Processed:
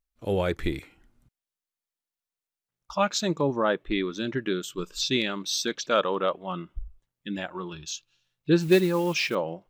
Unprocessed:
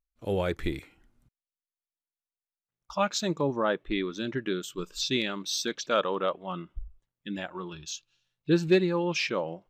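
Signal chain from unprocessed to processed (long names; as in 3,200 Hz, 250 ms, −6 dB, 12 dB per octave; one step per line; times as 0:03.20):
0:08.60–0:09.35: noise that follows the level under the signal 23 dB
level +2.5 dB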